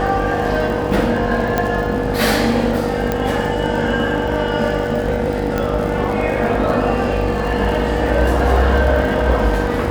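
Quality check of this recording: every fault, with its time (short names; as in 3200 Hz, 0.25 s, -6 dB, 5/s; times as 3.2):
buzz 50 Hz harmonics 18 -23 dBFS
crackle 68/s -25 dBFS
tone 480 Hz -22 dBFS
1.58 pop -4 dBFS
3.12 pop -6 dBFS
5.58 pop -7 dBFS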